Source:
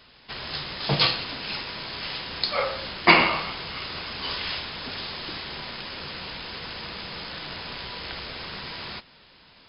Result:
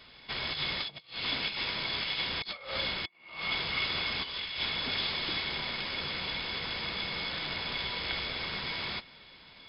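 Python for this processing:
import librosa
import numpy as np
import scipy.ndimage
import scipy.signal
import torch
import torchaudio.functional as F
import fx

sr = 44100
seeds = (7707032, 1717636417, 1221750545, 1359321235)

y = fx.dynamic_eq(x, sr, hz=3100.0, q=1.3, threshold_db=-37.0, ratio=4.0, max_db=4)
y = fx.over_compress(y, sr, threshold_db=-32.0, ratio=-0.5)
y = fx.small_body(y, sr, hz=(2200.0, 3400.0), ring_ms=60, db=15)
y = F.gain(torch.from_numpy(y), -5.5).numpy()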